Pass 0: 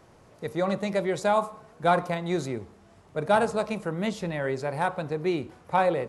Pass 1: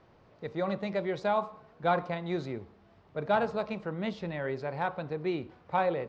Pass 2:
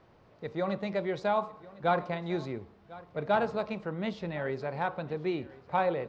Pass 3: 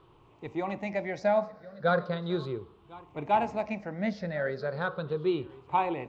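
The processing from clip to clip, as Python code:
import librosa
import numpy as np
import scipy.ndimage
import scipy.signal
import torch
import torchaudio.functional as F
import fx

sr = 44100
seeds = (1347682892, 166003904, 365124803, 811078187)

y1 = scipy.signal.sosfilt(scipy.signal.butter(4, 4600.0, 'lowpass', fs=sr, output='sos'), x)
y1 = y1 * 10.0 ** (-5.0 / 20.0)
y2 = y1 + 10.0 ** (-20.0 / 20.0) * np.pad(y1, (int(1049 * sr / 1000.0), 0))[:len(y1)]
y3 = fx.spec_ripple(y2, sr, per_octave=0.65, drift_hz=-0.37, depth_db=13)
y3 = y3 * 10.0 ** (-1.0 / 20.0)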